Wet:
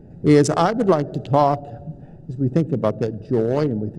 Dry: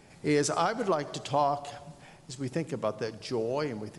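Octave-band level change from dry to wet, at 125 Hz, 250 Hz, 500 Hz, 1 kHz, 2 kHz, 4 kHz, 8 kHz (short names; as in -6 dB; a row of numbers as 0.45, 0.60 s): +15.5 dB, +13.5 dB, +10.5 dB, +8.0 dB, +4.5 dB, +3.0 dB, n/a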